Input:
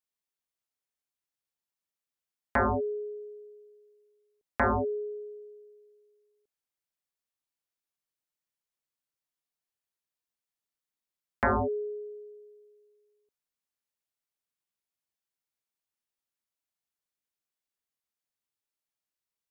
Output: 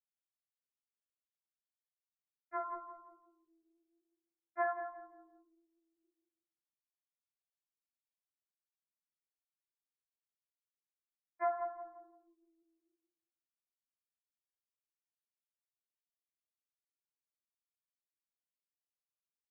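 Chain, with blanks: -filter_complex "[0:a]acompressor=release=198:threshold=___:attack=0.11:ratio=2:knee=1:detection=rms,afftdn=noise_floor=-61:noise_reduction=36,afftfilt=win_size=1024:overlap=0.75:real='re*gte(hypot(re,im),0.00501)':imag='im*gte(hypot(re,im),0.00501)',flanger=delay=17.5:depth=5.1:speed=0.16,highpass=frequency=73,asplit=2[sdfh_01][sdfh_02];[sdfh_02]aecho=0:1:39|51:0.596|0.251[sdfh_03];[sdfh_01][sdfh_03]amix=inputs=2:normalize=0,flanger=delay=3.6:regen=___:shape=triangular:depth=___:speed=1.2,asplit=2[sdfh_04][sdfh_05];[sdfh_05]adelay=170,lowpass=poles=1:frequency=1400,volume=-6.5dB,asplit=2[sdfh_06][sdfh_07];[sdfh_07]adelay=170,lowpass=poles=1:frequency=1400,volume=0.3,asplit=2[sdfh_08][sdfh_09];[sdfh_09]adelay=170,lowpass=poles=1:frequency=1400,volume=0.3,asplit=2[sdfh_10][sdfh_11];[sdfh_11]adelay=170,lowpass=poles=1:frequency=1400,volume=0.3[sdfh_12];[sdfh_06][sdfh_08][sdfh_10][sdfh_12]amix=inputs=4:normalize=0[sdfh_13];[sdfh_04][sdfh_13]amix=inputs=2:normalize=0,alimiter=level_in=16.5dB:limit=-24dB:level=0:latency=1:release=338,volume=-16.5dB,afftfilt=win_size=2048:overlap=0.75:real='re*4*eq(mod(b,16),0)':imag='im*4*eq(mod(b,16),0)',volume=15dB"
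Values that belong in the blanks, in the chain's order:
-45dB, -22, 5.9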